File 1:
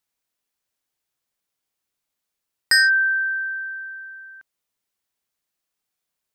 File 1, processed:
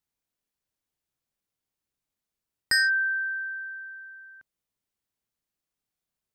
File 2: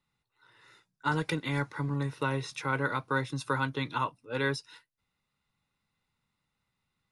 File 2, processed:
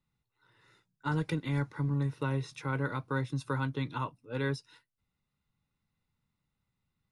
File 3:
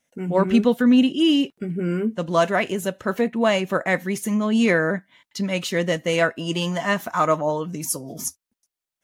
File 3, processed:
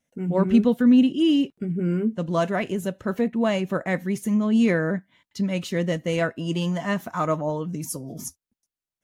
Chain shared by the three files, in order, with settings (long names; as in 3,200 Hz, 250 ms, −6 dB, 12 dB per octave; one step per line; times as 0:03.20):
low-shelf EQ 340 Hz +10.5 dB
level −7 dB